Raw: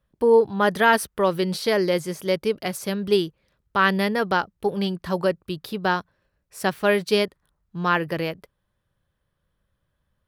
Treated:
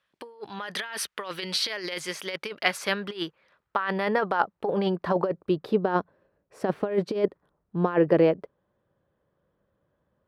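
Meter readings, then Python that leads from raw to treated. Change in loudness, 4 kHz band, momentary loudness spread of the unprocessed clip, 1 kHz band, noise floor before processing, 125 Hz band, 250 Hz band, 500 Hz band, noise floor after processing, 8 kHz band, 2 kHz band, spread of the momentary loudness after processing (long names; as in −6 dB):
−4.5 dB, −2.5 dB, 10 LU, −6.0 dB, −76 dBFS, −3.5 dB, −3.0 dB, −4.5 dB, −78 dBFS, −2.0 dB, −6.5 dB, 11 LU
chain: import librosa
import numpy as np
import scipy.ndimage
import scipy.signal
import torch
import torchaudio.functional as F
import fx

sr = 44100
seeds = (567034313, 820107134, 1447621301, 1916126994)

y = fx.over_compress(x, sr, threshold_db=-24.0, ratio=-0.5)
y = fx.filter_sweep_bandpass(y, sr, from_hz=2600.0, to_hz=440.0, start_s=1.97, end_s=5.89, q=0.93)
y = y * librosa.db_to_amplitude(5.5)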